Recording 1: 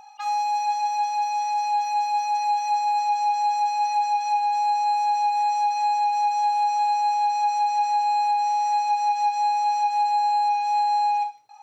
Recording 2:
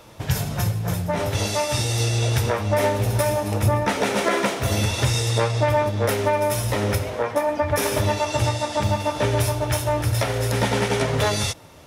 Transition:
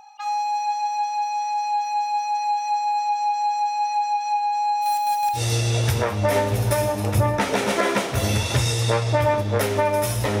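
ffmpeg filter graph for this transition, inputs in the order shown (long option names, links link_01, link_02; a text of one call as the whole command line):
ffmpeg -i cue0.wav -i cue1.wav -filter_complex "[0:a]asplit=3[link_01][link_02][link_03];[link_01]afade=type=out:start_time=4.81:duration=0.02[link_04];[link_02]acrusher=bits=3:mode=log:mix=0:aa=0.000001,afade=type=in:start_time=4.81:duration=0.02,afade=type=out:start_time=5.41:duration=0.02[link_05];[link_03]afade=type=in:start_time=5.41:duration=0.02[link_06];[link_04][link_05][link_06]amix=inputs=3:normalize=0,apad=whole_dur=10.4,atrim=end=10.4,atrim=end=5.41,asetpts=PTS-STARTPTS[link_07];[1:a]atrim=start=1.81:end=6.88,asetpts=PTS-STARTPTS[link_08];[link_07][link_08]acrossfade=duration=0.08:curve1=tri:curve2=tri" out.wav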